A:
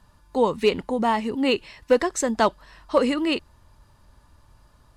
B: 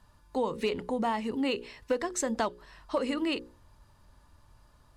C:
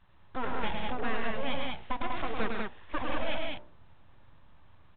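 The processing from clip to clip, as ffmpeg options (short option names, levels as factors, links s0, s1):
-af "bandreject=f=60:t=h:w=6,bandreject=f=120:t=h:w=6,bandreject=f=180:t=h:w=6,bandreject=f=240:t=h:w=6,bandreject=f=300:t=h:w=6,bandreject=f=360:t=h:w=6,bandreject=f=420:t=h:w=6,bandreject=f=480:t=h:w=6,bandreject=f=540:t=h:w=6,acompressor=threshold=0.0794:ratio=4,volume=0.631"
-af "aresample=16000,aeval=exprs='abs(val(0))':c=same,aresample=44100,aecho=1:1:105|148.7|195.3:0.631|0.398|0.708,volume=0.841" -ar 8000 -c:a pcm_alaw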